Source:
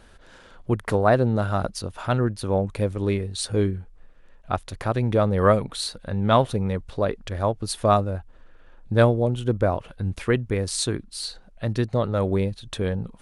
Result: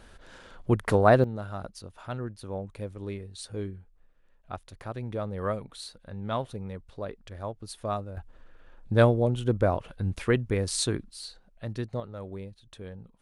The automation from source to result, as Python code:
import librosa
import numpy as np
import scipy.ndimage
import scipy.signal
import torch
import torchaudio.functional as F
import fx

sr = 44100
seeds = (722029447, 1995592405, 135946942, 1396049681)

y = fx.gain(x, sr, db=fx.steps((0.0, -0.5), (1.24, -12.5), (8.17, -2.5), (11.11, -9.5), (12.0, -16.5)))